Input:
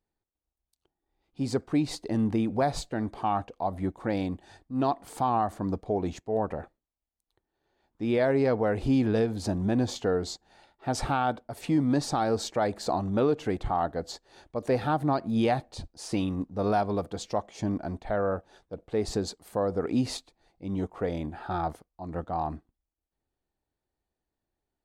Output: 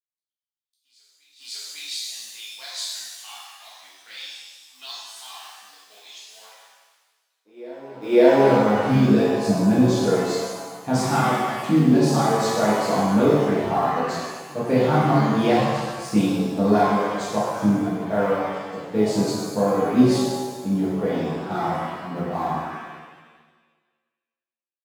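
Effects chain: G.711 law mismatch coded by A; high-pass sweep 3400 Hz -> 150 Hz, 7.27–8.5; reverse echo 0.553 s -23.5 dB; reverb removal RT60 1.7 s; low shelf 200 Hz -3 dB; shimmer reverb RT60 1.4 s, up +7 st, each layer -8 dB, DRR -9 dB; gain -1 dB

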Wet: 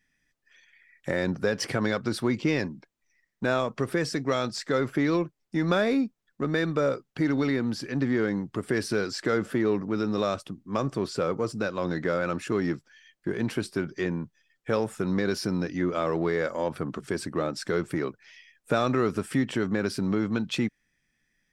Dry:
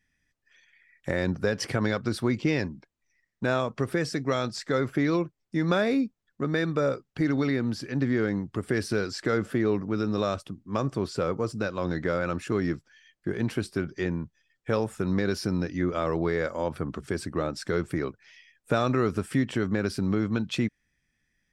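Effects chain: bell 66 Hz -14 dB 0.96 oct; in parallel at -12 dB: overloaded stage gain 31 dB

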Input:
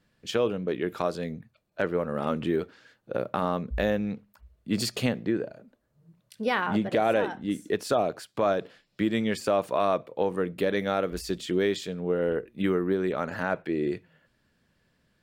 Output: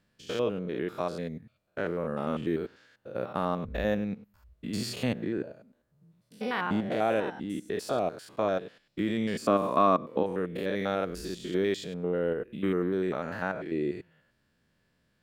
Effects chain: stepped spectrum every 0.1 s; 9.42–10.23 small resonant body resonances 240/1100 Hz, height 11 dB, ringing for 20 ms; gain -1.5 dB

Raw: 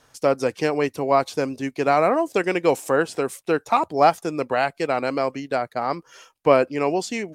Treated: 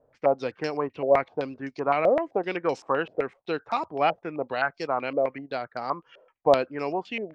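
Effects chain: air absorption 72 m; stepped low-pass 7.8 Hz 570–5300 Hz; gain -8 dB

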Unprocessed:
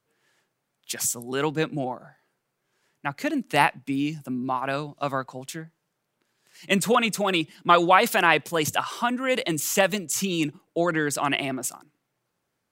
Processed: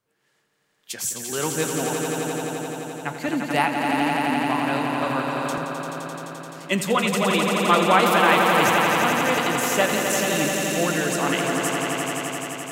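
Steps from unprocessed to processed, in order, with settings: flange 1.2 Hz, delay 9.8 ms, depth 4.5 ms, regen -72%; swelling echo 86 ms, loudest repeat 5, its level -6.5 dB; 3.28–5.58 three-band squash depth 40%; gain +3 dB

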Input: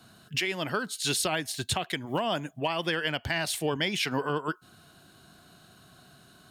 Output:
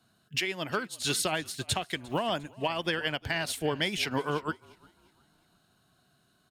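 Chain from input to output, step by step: on a send: frequency-shifting echo 0.352 s, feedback 44%, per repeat -43 Hz, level -17.5 dB; on the sum: upward expander 1.5:1, over -51 dBFS

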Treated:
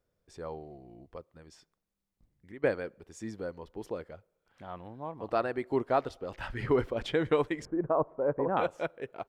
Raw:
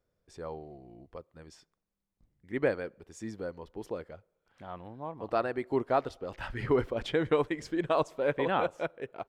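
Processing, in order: 1.32–2.64 compressor 2.5:1, threshold -50 dBFS, peak gain reduction 14.5 dB; 7.65–8.57 LPF 1200 Hz 24 dB/oct

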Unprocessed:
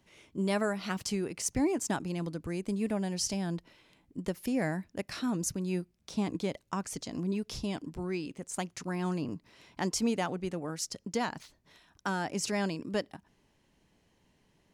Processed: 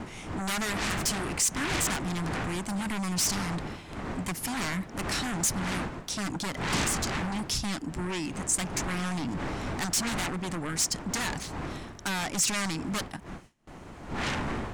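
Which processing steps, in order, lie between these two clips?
wind noise 560 Hz -37 dBFS; in parallel at -11.5 dB: sine folder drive 20 dB, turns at -13.5 dBFS; on the sum: ten-band EQ 500 Hz -8 dB, 2000 Hz +3 dB, 8000 Hz +8 dB; gate with hold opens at -33 dBFS; gain -4.5 dB

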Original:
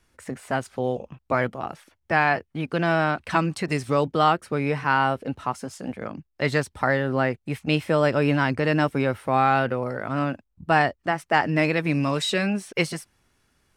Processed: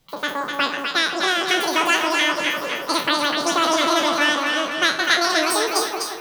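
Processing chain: spectral trails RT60 0.73 s; wide varispeed 2.22×; split-band echo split 1100 Hz, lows 0.176 s, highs 0.25 s, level -4 dB

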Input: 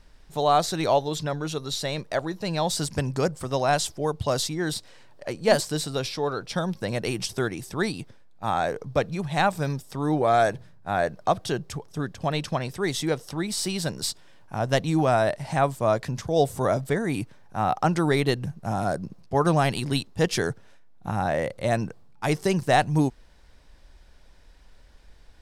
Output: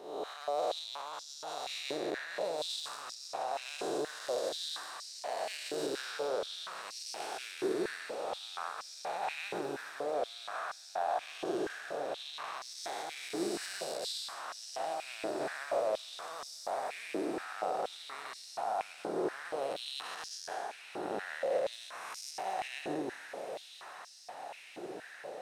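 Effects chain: time blur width 0.428 s; 21.72–22.31 high shelf 5200 Hz +8 dB; in parallel at +1 dB: compressor, threshold -42 dBFS, peak gain reduction 18.5 dB; on the sum: limiter -22.5 dBFS, peak gain reduction 9 dB; hard clip -24.5 dBFS, distortion -26 dB; on a send: diffused feedback echo 1.332 s, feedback 76%, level -9 dB; on the sum: stepped high-pass 4.2 Hz 360–5200 Hz; gain -7 dB

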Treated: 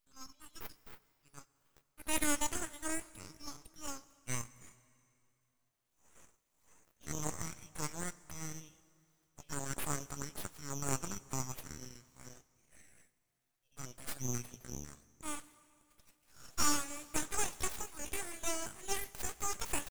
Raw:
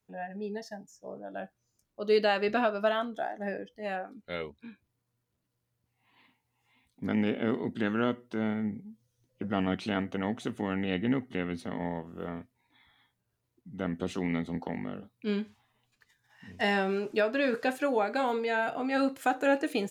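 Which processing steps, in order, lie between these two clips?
pitch shift +6.5 st; elliptic high-pass 2900 Hz, stop band 40 dB; full-wave rectifier; reverb RT60 2.7 s, pre-delay 77 ms, DRR 19.5 dB; gain +8 dB

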